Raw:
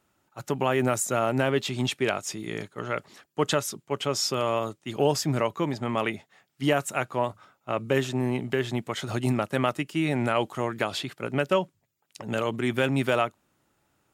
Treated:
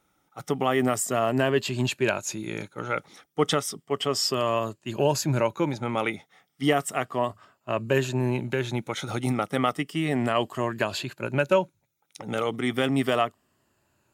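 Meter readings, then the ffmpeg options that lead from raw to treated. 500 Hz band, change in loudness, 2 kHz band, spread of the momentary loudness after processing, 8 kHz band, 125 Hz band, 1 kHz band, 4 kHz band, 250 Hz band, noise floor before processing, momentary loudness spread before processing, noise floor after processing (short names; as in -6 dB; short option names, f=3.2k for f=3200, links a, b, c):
+1.0 dB, +1.0 dB, +0.5 dB, 8 LU, +0.5 dB, +0.5 dB, +1.0 dB, +1.0 dB, +1.0 dB, -73 dBFS, 8 LU, -73 dBFS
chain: -af "afftfilt=real='re*pow(10,8/40*sin(2*PI*(1.4*log(max(b,1)*sr/1024/100)/log(2)-(-0.33)*(pts-256)/sr)))':imag='im*pow(10,8/40*sin(2*PI*(1.4*log(max(b,1)*sr/1024/100)/log(2)-(-0.33)*(pts-256)/sr)))':win_size=1024:overlap=0.75"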